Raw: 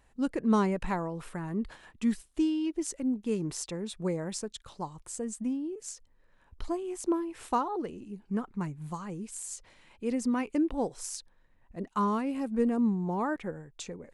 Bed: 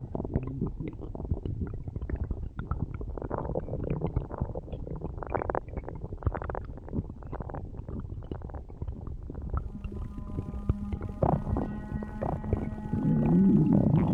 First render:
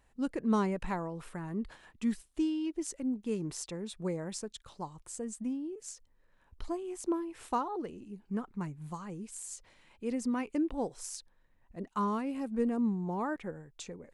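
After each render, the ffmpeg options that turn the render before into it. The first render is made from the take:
-af "volume=0.668"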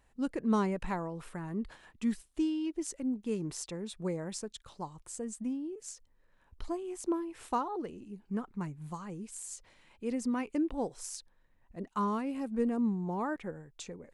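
-af anull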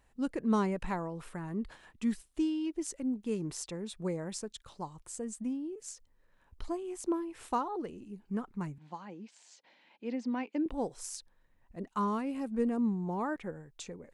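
-filter_complex "[0:a]asettb=1/sr,asplit=3[s0][s1][s2];[s0]atrim=end=8.784[s3];[s1]atrim=start=8.78:end=10.66,asetpts=PTS-STARTPTS,afade=t=in:d=0.004:c=qsin,afade=t=out:st=1.876:d=0.004:c=qsin,highpass=f=220:w=0.5412,highpass=f=220:w=1.3066,equalizer=f=410:t=q:w=4:g=-7,equalizer=f=840:t=q:w=4:g=4,equalizer=f=1200:t=q:w=4:g=-8,lowpass=f=4800:w=0.5412,lowpass=f=4800:w=1.3066[s4];[s2]atrim=start=10.656[s5];[s3][s4]acrossfade=d=0.004:c1=hsin:c2=qsin[s6];[s6][s5]acrossfade=d=0.004:c1=qsin:c2=hsin"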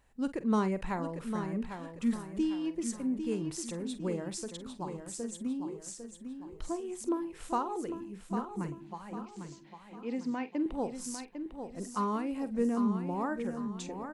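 -filter_complex "[0:a]asplit=2[s0][s1];[s1]adelay=47,volume=0.2[s2];[s0][s2]amix=inputs=2:normalize=0,aecho=1:1:801|1602|2403|3204|4005:0.398|0.163|0.0669|0.0274|0.0112"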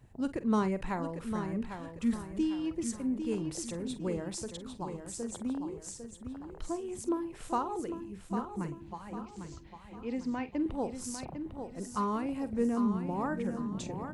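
-filter_complex "[1:a]volume=0.106[s0];[0:a][s0]amix=inputs=2:normalize=0"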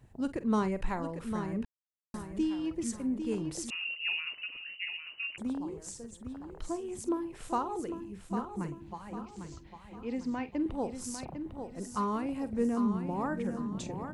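-filter_complex "[0:a]asettb=1/sr,asplit=3[s0][s1][s2];[s0]atrim=end=0.424[s3];[s1]atrim=start=0.42:end=1.04,asetpts=PTS-STARTPTS,afade=t=in:d=0.004:c=qsin,afade=t=out:st=0.616:d=0.004:c=qsin,asubboost=boost=11.5:cutoff=77[s4];[s2]atrim=start=1.036[s5];[s3][s4]acrossfade=d=0.004:c1=hsin:c2=qsin[s6];[s6][s5]acrossfade=d=0.004:c1=qsin:c2=hsin,asettb=1/sr,asplit=3[s7][s8][s9];[s7]atrim=end=3.704[s10];[s8]atrim=start=3.7:end=5.38,asetpts=PTS-STARTPTS,afade=t=in:d=0.004:c=qsin,afade=t=out:st=1.676:d=0.004:c=qsin,lowpass=f=2600:t=q:w=0.5098,lowpass=f=2600:t=q:w=0.6013,lowpass=f=2600:t=q:w=0.9,lowpass=f=2600:t=q:w=2.563,afreqshift=-3000[s11];[s9]atrim=start=5.376[s12];[s10][s11]acrossfade=d=0.004:c1=hsin:c2=qsin[s13];[s13][s12]acrossfade=d=0.004:c1=qsin:c2=hsin,asplit=3[s14][s15][s16];[s14]atrim=end=1.65,asetpts=PTS-STARTPTS,afade=t=out:st=1.646:d=0.004:c=hsin[s17];[s15]atrim=start=1.65:end=2.14,asetpts=PTS-STARTPTS,volume=0[s18];[s16]atrim=start=2.14,asetpts=PTS-STARTPTS,afade=t=in:d=0.004:c=hsin[s19];[s17][s18][s19]concat=n=3:v=0:a=1"

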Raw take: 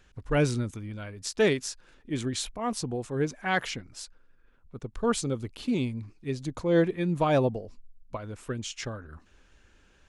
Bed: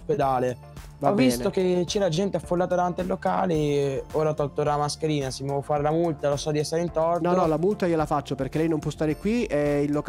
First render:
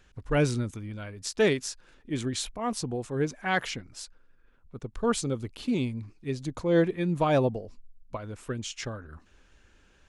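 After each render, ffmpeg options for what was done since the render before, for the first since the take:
-af anull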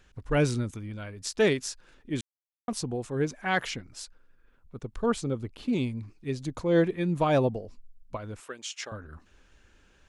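-filter_complex "[0:a]asettb=1/sr,asplit=3[s0][s1][s2];[s0]atrim=end=5.064[s3];[s1]atrim=start=5.06:end=5.73,asetpts=PTS-STARTPTS,afade=t=in:d=0.004:c=qsin,afade=t=out:st=0.666:d=0.004:c=qsin,highshelf=f=3000:g=-8.5[s4];[s2]atrim=start=5.726[s5];[s3][s4]acrossfade=d=0.004:c1=hsin:c2=qsin[s6];[s6][s5]acrossfade=d=0.004:c1=qsin:c2=hsin,asettb=1/sr,asplit=3[s7][s8][s9];[s7]atrim=end=8.404[s10];[s8]atrim=start=8.4:end=8.92,asetpts=PTS-STARTPTS,afade=t=in:d=0.004:c=qsin,afade=t=out:st=0.516:d=0.004:c=qsin,highpass=560[s11];[s9]atrim=start=8.916[s12];[s10][s11]acrossfade=d=0.004:c1=hsin:c2=qsin[s13];[s13][s12]acrossfade=d=0.004:c1=qsin:c2=hsin,asplit=3[s14][s15][s16];[s14]atrim=end=2.21,asetpts=PTS-STARTPTS,afade=t=out:st=2.206:d=0.004:c=hsin[s17];[s15]atrim=start=2.21:end=2.68,asetpts=PTS-STARTPTS,volume=0[s18];[s16]atrim=start=2.68,asetpts=PTS-STARTPTS,afade=t=in:d=0.004:c=hsin[s19];[s17][s18][s19]concat=n=3:v=0:a=1"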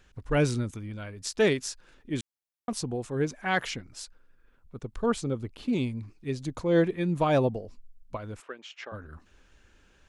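-filter_complex "[0:a]asplit=3[s0][s1][s2];[s0]afade=t=out:st=8.41:d=0.02[s3];[s1]highpass=210,lowpass=2500,afade=t=in:st=8.41:d=0.02,afade=t=out:st=8.92:d=0.02[s4];[s2]afade=t=in:st=8.92:d=0.02[s5];[s3][s4][s5]amix=inputs=3:normalize=0"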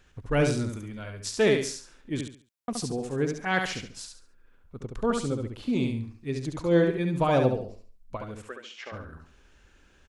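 -af "aecho=1:1:70|140|210|280:0.562|0.169|0.0506|0.0152"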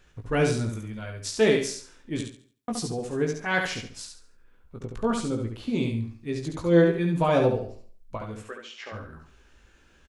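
-filter_complex "[0:a]asplit=2[s0][s1];[s1]adelay=18,volume=0.562[s2];[s0][s2]amix=inputs=2:normalize=0,asplit=2[s3][s4];[s4]adelay=233.2,volume=0.0316,highshelf=f=4000:g=-5.25[s5];[s3][s5]amix=inputs=2:normalize=0"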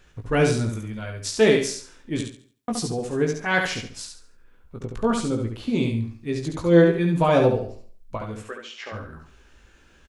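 -af "volume=1.5"

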